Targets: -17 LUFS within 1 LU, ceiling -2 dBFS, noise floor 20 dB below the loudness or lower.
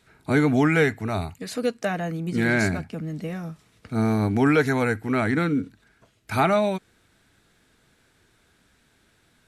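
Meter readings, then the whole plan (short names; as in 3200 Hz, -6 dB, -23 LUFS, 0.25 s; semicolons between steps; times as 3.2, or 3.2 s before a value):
loudness -24.0 LUFS; peak -7.5 dBFS; loudness target -17.0 LUFS
-> gain +7 dB; limiter -2 dBFS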